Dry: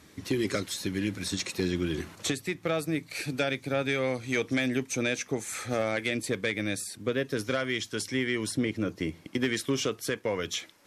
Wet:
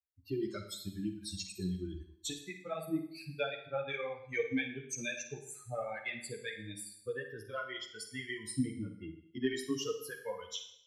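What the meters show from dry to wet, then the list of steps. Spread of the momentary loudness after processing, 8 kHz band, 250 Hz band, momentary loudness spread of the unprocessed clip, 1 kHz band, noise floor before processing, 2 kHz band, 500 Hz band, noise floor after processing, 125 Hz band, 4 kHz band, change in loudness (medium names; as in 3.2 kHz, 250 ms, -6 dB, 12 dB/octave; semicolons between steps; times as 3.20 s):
7 LU, -8.0 dB, -9.0 dB, 4 LU, -7.5 dB, -55 dBFS, -9.5 dB, -9.0 dB, -62 dBFS, -9.0 dB, -9.5 dB, -9.0 dB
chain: expander on every frequency bin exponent 3; chorus voices 4, 1.2 Hz, delay 12 ms, depth 3.4 ms; Schroeder reverb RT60 0.67 s, DRR 6.5 dB; trim +1 dB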